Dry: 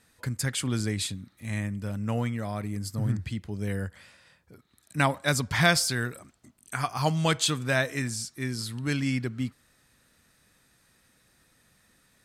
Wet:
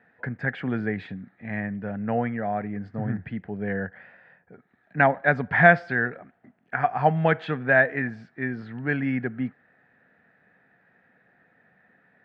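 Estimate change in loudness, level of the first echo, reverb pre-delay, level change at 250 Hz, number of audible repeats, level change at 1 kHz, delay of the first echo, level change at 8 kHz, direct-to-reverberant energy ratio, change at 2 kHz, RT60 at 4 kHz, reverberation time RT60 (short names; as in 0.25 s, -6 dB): +3.5 dB, none, none, +2.5 dB, none, +7.0 dB, none, under -40 dB, none, +7.5 dB, none, none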